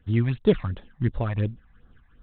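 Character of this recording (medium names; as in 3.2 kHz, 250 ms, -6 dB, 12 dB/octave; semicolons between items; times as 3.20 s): phasing stages 8, 2.8 Hz, lowest notch 390–2500 Hz; tremolo saw up 2.5 Hz, depth 40%; IMA ADPCM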